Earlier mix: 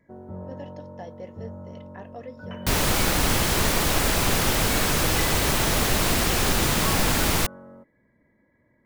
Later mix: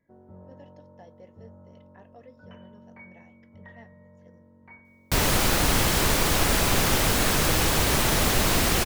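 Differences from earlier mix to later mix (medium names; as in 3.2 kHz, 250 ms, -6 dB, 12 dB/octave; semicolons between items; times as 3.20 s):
speech -10.5 dB; first sound -10.5 dB; second sound: entry +2.45 s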